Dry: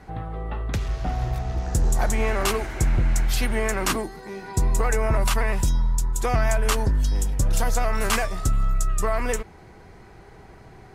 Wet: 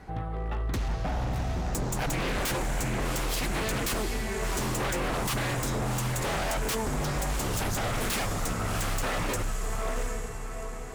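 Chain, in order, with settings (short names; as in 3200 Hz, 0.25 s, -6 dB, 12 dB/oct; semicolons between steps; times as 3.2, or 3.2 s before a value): diffused feedback echo 0.741 s, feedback 44%, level -6 dB; wavefolder -22.5 dBFS; gain -1.5 dB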